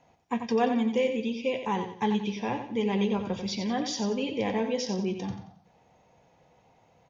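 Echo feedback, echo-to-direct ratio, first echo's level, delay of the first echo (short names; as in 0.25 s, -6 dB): 34%, -7.5 dB, -8.0 dB, 90 ms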